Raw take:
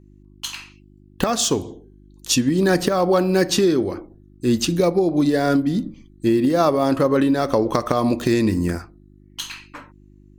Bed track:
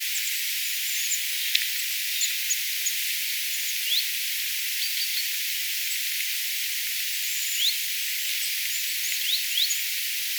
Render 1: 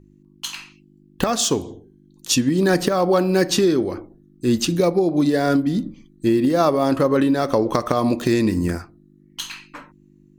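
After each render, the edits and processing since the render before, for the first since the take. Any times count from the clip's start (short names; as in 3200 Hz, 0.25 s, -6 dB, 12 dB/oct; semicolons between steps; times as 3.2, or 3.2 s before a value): de-hum 50 Hz, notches 2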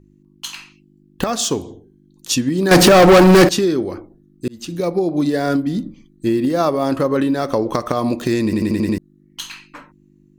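2.71–3.49 sample leveller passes 5; 4.48–4.98 fade in; 8.44 stutter in place 0.09 s, 6 plays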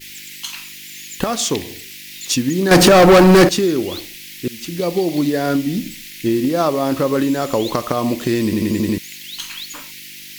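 add bed track -8 dB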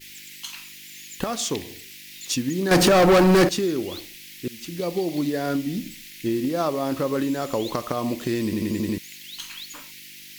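gain -7 dB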